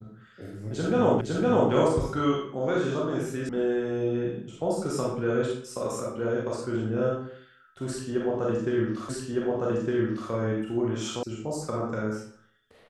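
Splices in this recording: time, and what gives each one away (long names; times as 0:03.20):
0:01.21: the same again, the last 0.51 s
0:03.49: cut off before it has died away
0:09.09: the same again, the last 1.21 s
0:11.23: cut off before it has died away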